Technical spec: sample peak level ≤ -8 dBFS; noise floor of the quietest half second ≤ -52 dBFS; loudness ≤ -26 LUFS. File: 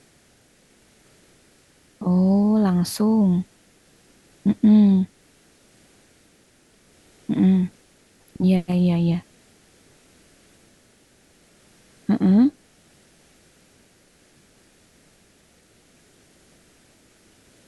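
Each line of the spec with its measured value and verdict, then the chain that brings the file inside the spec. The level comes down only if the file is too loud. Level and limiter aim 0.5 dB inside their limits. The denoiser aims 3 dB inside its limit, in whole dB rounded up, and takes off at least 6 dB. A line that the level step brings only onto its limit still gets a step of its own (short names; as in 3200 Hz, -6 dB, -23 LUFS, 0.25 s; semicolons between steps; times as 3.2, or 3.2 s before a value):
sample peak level -7.0 dBFS: fail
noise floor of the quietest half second -57 dBFS: OK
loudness -20.0 LUFS: fail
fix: gain -6.5 dB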